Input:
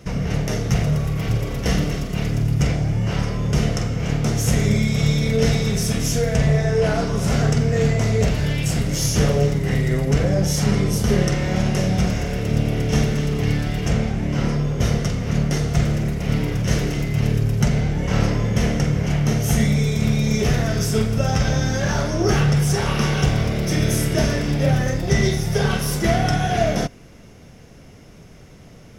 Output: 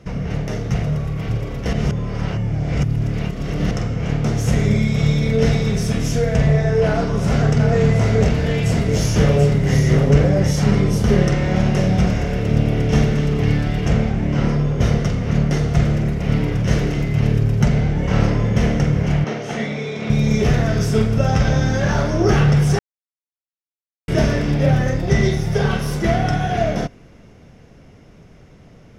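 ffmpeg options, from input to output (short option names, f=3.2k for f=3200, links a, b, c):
-filter_complex "[0:a]asettb=1/sr,asplit=3[a][b][c];[a]atrim=end=6.864[d];[b]atrim=start=6.86:end=10.51,asetpts=PTS-STARTPTS,afade=t=in:d=0.004:c=qsin,afade=t=out:st=3.646:d=0.004:c=qsin,aecho=1:1:734:0.531,atrim=end_sample=160965[e];[c]atrim=start=10.506[f];[d][e]acrossfade=d=0.004:c1=hsin:c2=qsin[g];[g][f]acrossfade=d=0.004:c1=qsin:c2=hsin,asettb=1/sr,asplit=3[h][i][j];[h]atrim=end=19.244[k];[i]atrim=start=19.24:end=20.1,asetpts=PTS-STARTPTS,afade=t=in:d=0.004:c=qsin,afade=t=out:st=0.856:d=0.004:c=qsin,highpass=320,lowpass=4.4k[l];[j]atrim=start=20.096[m];[k][l]acrossfade=d=0.004:c1=hsin:c2=qsin[n];[n][m]acrossfade=d=0.004:c1=qsin:c2=hsin,asplit=5[o][p][q][r][s];[o]atrim=end=1.732[t];[p]atrim=start=1.728:end=3.712,asetpts=PTS-STARTPTS,areverse[u];[q]atrim=start=3.708:end=22.79,asetpts=PTS-STARTPTS,afade=t=out:st=19.078:d=0.004:c=hsin[v];[r]atrim=start=22.79:end=24.08,asetpts=PTS-STARTPTS,volume=0[w];[s]atrim=start=24.08,asetpts=PTS-STARTPTS,afade=t=in:d=0.004:c=hsin[x];[t][u]acrossfade=d=0.004:c1=hsin:c2=hsin[y];[v][w][x]concat=n=3:v=0:a=1[z];[y][z]acrossfade=d=0.004:c1=hsin:c2=hsin,lowpass=f=2.9k:p=1,dynaudnorm=f=340:g=21:m=11.5dB,volume=-1dB"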